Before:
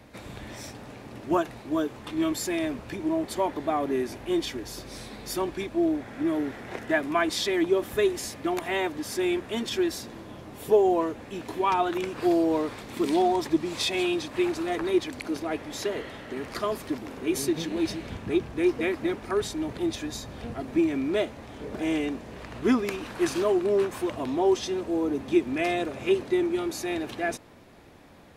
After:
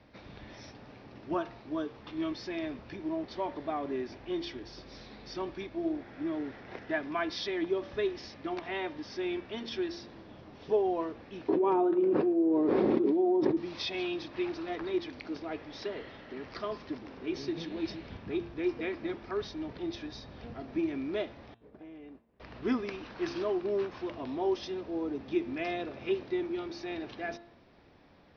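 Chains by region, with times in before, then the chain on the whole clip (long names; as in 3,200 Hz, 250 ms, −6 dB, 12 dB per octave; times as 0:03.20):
0:11.48–0:13.57: resonant band-pass 360 Hz, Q 2.3 + comb filter 5.4 ms, depth 32% + envelope flattener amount 100%
0:21.54–0:22.40: low-pass filter 1,400 Hz 6 dB per octave + downward expander −29 dBFS + downward compressor 8 to 1, threshold −38 dBFS
whole clip: Butterworth low-pass 5,700 Hz 96 dB per octave; hum removal 114.5 Hz, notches 35; level −7.5 dB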